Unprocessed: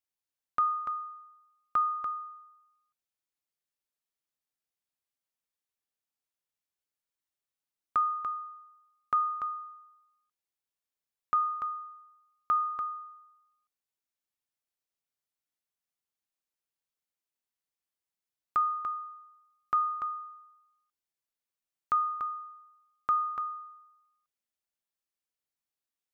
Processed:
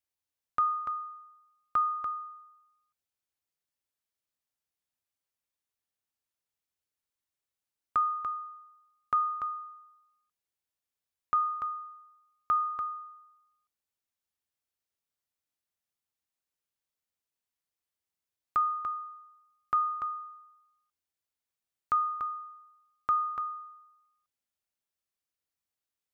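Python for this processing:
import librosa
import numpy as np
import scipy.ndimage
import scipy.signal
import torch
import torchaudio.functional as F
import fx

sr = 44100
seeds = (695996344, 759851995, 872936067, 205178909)

y = fx.peak_eq(x, sr, hz=81.0, db=8.0, octaves=0.61)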